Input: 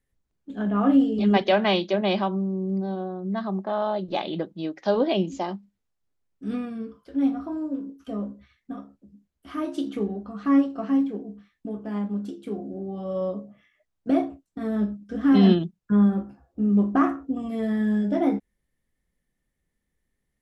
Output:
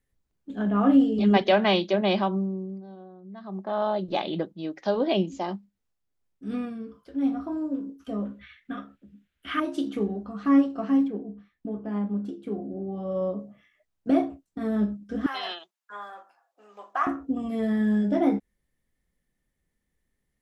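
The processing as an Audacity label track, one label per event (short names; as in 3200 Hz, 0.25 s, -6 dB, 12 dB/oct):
2.370000	3.830000	dip -14.5 dB, fades 0.43 s
4.410000	7.470000	tremolo 2.7 Hz, depth 36%
8.250000	9.600000	band shelf 2200 Hz +14 dB
11.080000	13.400000	high shelf 3100 Hz -10.5 dB
15.260000	17.070000	HPF 740 Hz 24 dB/oct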